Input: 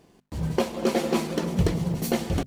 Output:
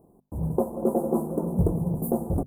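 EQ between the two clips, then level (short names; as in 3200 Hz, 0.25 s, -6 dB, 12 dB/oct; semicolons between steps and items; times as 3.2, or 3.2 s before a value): inverse Chebyshev band-stop 2300–4600 Hz, stop band 70 dB; 0.0 dB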